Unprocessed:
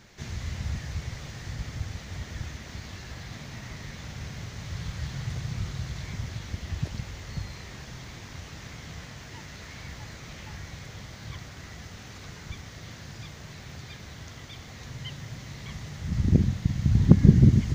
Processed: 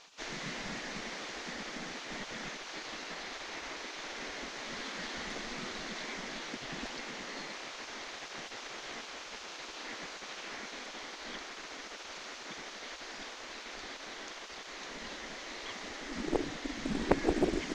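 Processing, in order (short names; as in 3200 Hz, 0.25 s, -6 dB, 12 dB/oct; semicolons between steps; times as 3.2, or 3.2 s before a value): spectral gate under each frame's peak -15 dB weak; air absorption 62 m; Doppler distortion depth 0.43 ms; gain +5 dB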